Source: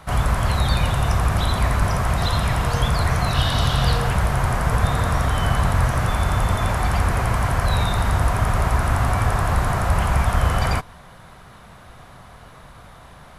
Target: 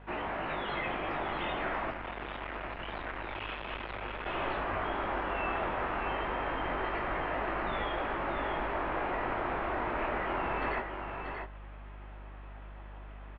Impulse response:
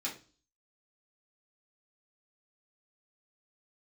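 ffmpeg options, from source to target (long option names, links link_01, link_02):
-filter_complex "[0:a]flanger=delay=18:depth=5:speed=0.25,aecho=1:1:635:0.501,asettb=1/sr,asplit=3[link_01][link_02][link_03];[link_01]atrim=end=1.904[link_04];[link_02]atrim=start=1.9:end=4.26,asetpts=PTS-STARTPTS,afade=type=in:duration=0.004:curve=qsin,afade=type=out:start_time=2.356:duration=0.004:curve=qsin,aeval=exprs='(tanh(20*val(0)+0.8)-tanh(0.8))/20':channel_layout=same[link_05];[link_03]atrim=start=4.256[link_06];[link_04][link_05]acrossfade=duration=0.004:curve1=hsin:curve2=qsin[link_07];[link_07][link_06]acrossfade=duration=0.004:curve1=qsin:curve2=hsin,tiltshelf=frequency=1300:gain=-6,highpass=frequency=370:width_type=q:width=0.5412,highpass=frequency=370:width_type=q:width=1.307,lowpass=frequency=3000:width_type=q:width=0.5176,lowpass=frequency=3000:width_type=q:width=0.7071,lowpass=frequency=3000:width_type=q:width=1.932,afreqshift=-370,aeval=exprs='val(0)+0.00501*(sin(2*PI*50*n/s)+sin(2*PI*2*50*n/s)/2+sin(2*PI*3*50*n/s)/3+sin(2*PI*4*50*n/s)/4+sin(2*PI*5*50*n/s)/5)':channel_layout=same,asubboost=boost=2.5:cutoff=76,volume=-4.5dB"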